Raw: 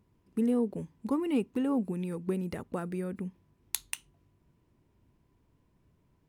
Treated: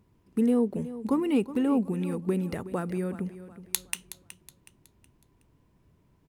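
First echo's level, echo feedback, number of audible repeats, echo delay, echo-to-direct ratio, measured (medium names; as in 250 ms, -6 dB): -14.5 dB, 38%, 3, 370 ms, -14.0 dB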